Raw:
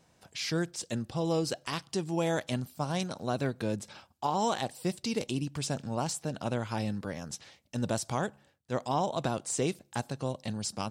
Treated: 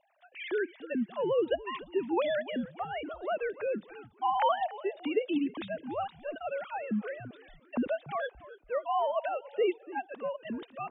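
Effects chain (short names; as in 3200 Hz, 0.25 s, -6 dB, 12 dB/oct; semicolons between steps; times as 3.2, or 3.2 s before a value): sine-wave speech; frequency-shifting echo 0.287 s, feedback 41%, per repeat -93 Hz, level -17.5 dB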